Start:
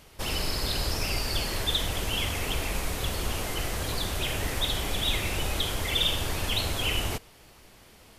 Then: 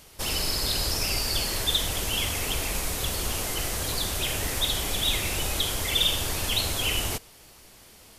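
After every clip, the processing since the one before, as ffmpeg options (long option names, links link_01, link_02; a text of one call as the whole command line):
ffmpeg -i in.wav -af "bass=frequency=250:gain=-1,treble=frequency=4000:gain=7" out.wav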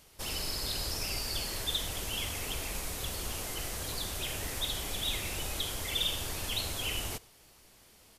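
ffmpeg -i in.wav -filter_complex "[0:a]asplit=2[link_01][link_02];[link_02]adelay=93.29,volume=-24dB,highshelf=frequency=4000:gain=-2.1[link_03];[link_01][link_03]amix=inputs=2:normalize=0,volume=-8dB" out.wav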